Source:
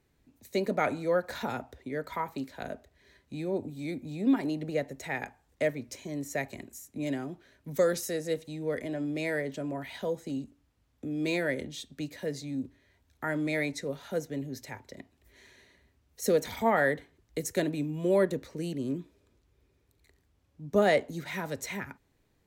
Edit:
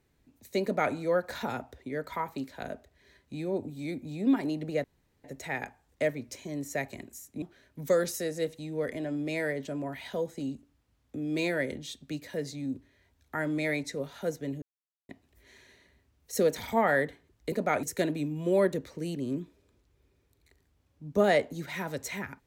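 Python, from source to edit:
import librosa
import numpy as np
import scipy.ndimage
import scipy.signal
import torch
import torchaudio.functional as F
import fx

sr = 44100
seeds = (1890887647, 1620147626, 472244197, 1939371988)

y = fx.edit(x, sr, fx.duplicate(start_s=0.63, length_s=0.31, to_s=17.41),
    fx.insert_room_tone(at_s=4.84, length_s=0.4),
    fx.cut(start_s=7.02, length_s=0.29),
    fx.silence(start_s=14.51, length_s=0.47), tone=tone)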